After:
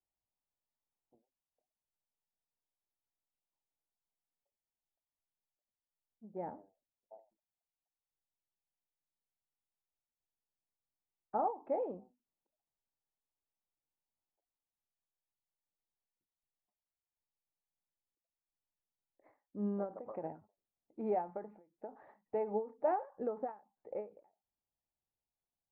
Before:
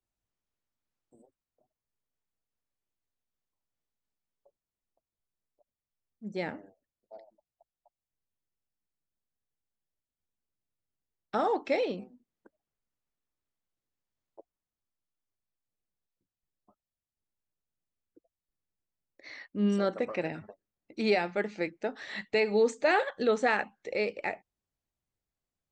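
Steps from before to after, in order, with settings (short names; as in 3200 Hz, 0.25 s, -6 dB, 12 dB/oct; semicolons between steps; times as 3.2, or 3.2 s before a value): ladder low-pass 1000 Hz, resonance 55%; ending taper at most 180 dB/s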